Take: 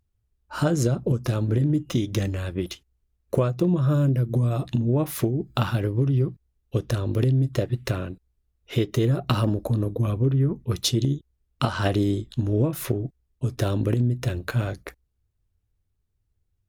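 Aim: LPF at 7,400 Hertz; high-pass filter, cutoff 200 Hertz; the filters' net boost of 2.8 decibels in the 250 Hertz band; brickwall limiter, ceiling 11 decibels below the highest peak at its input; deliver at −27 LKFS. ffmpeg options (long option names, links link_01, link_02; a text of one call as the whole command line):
ffmpeg -i in.wav -af "highpass=200,lowpass=7400,equalizer=frequency=250:width_type=o:gain=6,volume=1.5dB,alimiter=limit=-16dB:level=0:latency=1" out.wav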